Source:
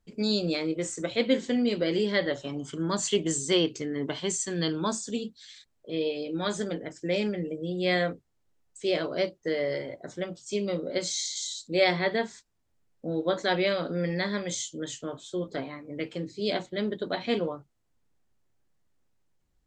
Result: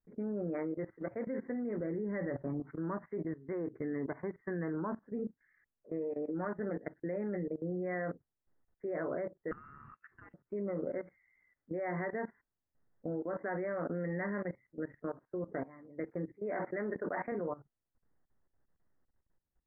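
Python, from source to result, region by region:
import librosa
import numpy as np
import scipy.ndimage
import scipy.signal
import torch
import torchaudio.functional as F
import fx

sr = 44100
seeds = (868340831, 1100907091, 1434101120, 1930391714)

y = fx.chain(x, sr, fx.low_shelf(hz=270.0, db=12.0),
    fx.hum_notches(base_hz=50, count=3), at=(1.8, 2.6))
y = fx.chain(y, sr, fx.freq_invert(carrier_hz=3300),
    fx.low_shelf(hz=450.0, db=9.5), at=(9.51, 10.34))
y = fx.chain(y, sr, fx.highpass(hz=210.0, slope=6),
    fx.tilt_eq(slope=2.0),
    fx.sustainer(db_per_s=28.0), at=(16.34, 17.32))
y = scipy.signal.sosfilt(scipy.signal.butter(16, 2000.0, 'lowpass', fs=sr, output='sos'), y)
y = fx.low_shelf(y, sr, hz=140.0, db=-2.5)
y = fx.level_steps(y, sr, step_db=18)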